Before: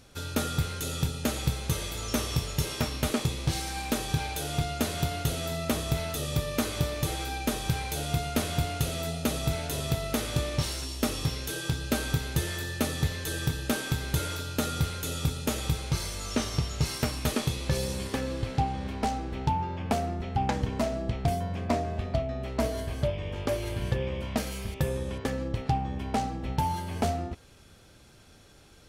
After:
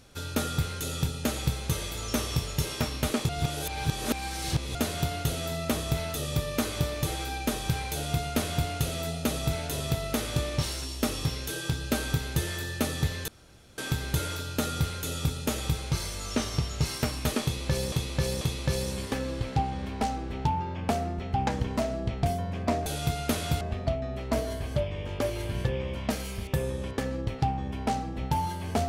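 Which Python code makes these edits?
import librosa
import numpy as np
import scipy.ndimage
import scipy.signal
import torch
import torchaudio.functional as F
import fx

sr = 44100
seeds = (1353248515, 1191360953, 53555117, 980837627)

y = fx.edit(x, sr, fx.reverse_span(start_s=3.29, length_s=1.46),
    fx.duplicate(start_s=7.93, length_s=0.75, to_s=21.88),
    fx.room_tone_fill(start_s=13.28, length_s=0.5),
    fx.repeat(start_s=17.43, length_s=0.49, count=3), tone=tone)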